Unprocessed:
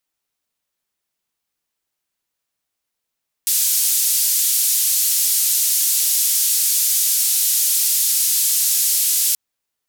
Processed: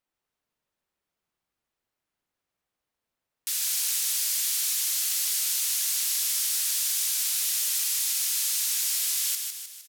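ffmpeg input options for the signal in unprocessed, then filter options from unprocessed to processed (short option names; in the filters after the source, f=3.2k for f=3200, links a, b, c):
-f lavfi -i "anoisesrc=c=white:d=5.88:r=44100:seed=1,highpass=f=5500,lowpass=f=15000,volume=-8.8dB"
-af "highshelf=f=2.8k:g=-12,aecho=1:1:154|308|462|616|770|924:0.562|0.281|0.141|0.0703|0.0351|0.0176"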